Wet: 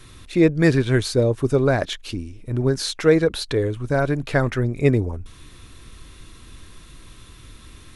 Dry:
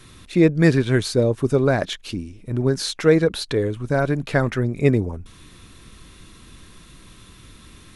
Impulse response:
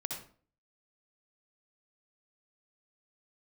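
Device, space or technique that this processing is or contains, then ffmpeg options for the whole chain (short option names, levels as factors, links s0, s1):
low shelf boost with a cut just above: -af "lowshelf=f=76:g=5.5,equalizer=f=190:t=o:w=0.5:g=-6"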